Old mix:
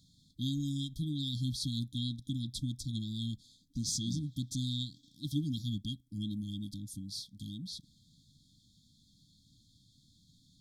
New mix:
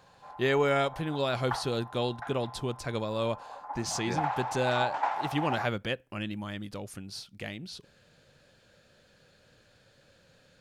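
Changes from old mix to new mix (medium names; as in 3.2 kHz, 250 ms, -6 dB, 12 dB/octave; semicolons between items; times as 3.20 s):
background +10.0 dB; master: remove brick-wall FIR band-stop 310–3200 Hz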